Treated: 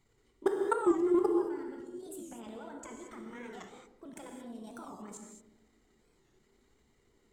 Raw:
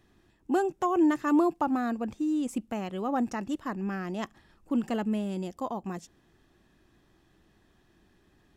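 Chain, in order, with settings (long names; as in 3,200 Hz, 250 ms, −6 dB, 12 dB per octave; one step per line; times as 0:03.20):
parametric band 6,300 Hz +11.5 dB 0.28 octaves
in parallel at +1 dB: downward compressor 5 to 1, threshold −35 dBFS, peak gain reduction 14 dB
on the sum: square-wave tremolo 9.7 Hz, depth 60%, duty 45%
flanger 0.62 Hz, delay 1 ms, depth 7.7 ms, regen −14%
speed change +17%
output level in coarse steps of 24 dB
on a send: feedback echo with a band-pass in the loop 144 ms, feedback 57%, band-pass 330 Hz, level −9 dB
on the sum: reverb whose tail is shaped and stops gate 250 ms flat, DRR 1.5 dB
wow of a warped record 45 rpm, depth 160 cents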